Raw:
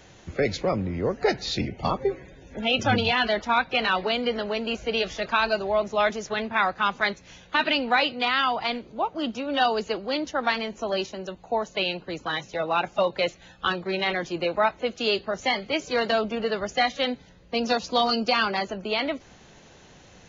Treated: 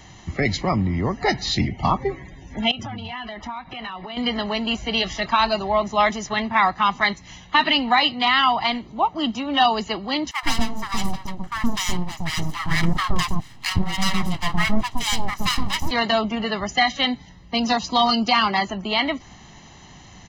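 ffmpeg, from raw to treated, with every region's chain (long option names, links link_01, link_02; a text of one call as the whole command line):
ffmpeg -i in.wav -filter_complex "[0:a]asettb=1/sr,asplit=3[link_01][link_02][link_03];[link_01]atrim=end=2.714[link_04];[link_02]atrim=start=2.71:end=4.17,asetpts=PTS-STARTPTS,afade=type=in:duration=0.004:curve=qsin,afade=type=out:start_time=1.456:duration=0.004:curve=qsin,highshelf=frequency=4700:gain=-11,bandreject=frequency=4300:width=11,acompressor=threshold=-34dB:ratio=10:attack=3.2:release=140:knee=1:detection=peak[link_05];[link_03]atrim=start=4.166[link_06];[link_04][link_05]acrossfade=duration=0.004:curve1=hsin:curve2=qsin[link_07];[link_07][link_06]acrossfade=duration=0.004:curve1=qsin:curve2=hsin,asettb=1/sr,asplit=3[link_08][link_09][link_10];[link_08]atrim=end=10.314[link_11];[link_09]atrim=start=10.31:end=15.91,asetpts=PTS-STARTPTS,afade=type=in:duration=0.004:curve=qsin,afade=type=out:start_time=5.596:duration=0.004:curve=qsin,aeval=exprs='abs(val(0))':channel_layout=same,equalizer=frequency=96:width=0.53:gain=7.5,acrossover=split=860[link_12][link_13];[link_12]adelay=120[link_14];[link_14][link_13]amix=inputs=2:normalize=0,atrim=end_sample=246960[link_15];[link_10]atrim=start=15.906[link_16];[link_11][link_15]acrossfade=duration=0.004:curve1=hsin:curve2=qsin[link_17];[link_17][link_16]acrossfade=duration=0.004:curve1=qsin:curve2=hsin,aecho=1:1:1:0.7,alimiter=level_in=10dB:limit=-1dB:release=50:level=0:latency=1,volume=-6dB" out.wav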